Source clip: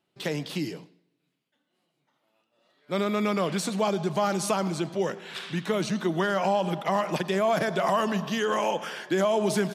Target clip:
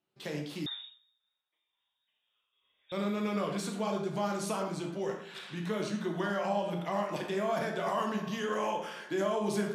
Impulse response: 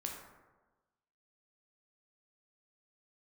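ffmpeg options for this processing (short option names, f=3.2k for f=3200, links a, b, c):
-filter_complex "[1:a]atrim=start_sample=2205,atrim=end_sample=6174[a];[0:a][a]afir=irnorm=-1:irlink=0,asettb=1/sr,asplit=3[b][c][d];[b]atrim=end=0.664[e];[c]atrim=start=0.66:end=2.92,asetpts=PTS-STARTPTS,afade=t=in:d=0.004:c=qsin,afade=t=out:st=2.256:d=0.004:c=qsin,lowpass=f=3.3k:t=q:w=0.5098,lowpass=f=3.3k:t=q:w=0.6013,lowpass=f=3.3k:t=q:w=0.9,lowpass=f=3.3k:t=q:w=2.563,afreqshift=-3900[f];[d]atrim=start=2.916[g];[e][f]acrossfade=d=0.004:c1=hsin:c2=qsin[h];[h][g]acrossfade=d=0.004:c1=qsin:c2=hsin,volume=-6.5dB"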